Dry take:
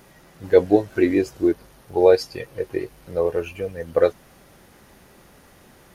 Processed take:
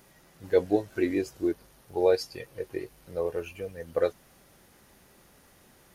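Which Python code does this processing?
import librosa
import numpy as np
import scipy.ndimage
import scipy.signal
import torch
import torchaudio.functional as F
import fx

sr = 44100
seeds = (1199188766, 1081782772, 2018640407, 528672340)

y = fx.high_shelf(x, sr, hz=3800.0, db=5.5)
y = y * 10.0 ** (-8.5 / 20.0)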